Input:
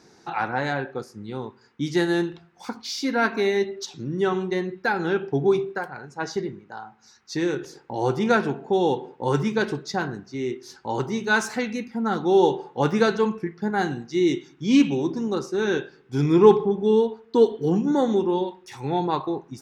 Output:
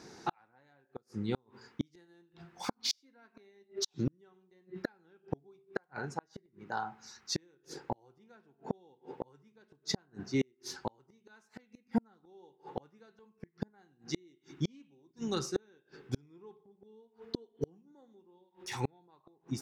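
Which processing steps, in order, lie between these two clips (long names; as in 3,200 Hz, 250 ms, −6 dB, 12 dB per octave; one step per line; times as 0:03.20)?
0:15.11–0:15.56: octave-band graphic EQ 250/500/1,000 Hz −10/−9/−9 dB
gate with flip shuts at −21 dBFS, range −41 dB
level +1.5 dB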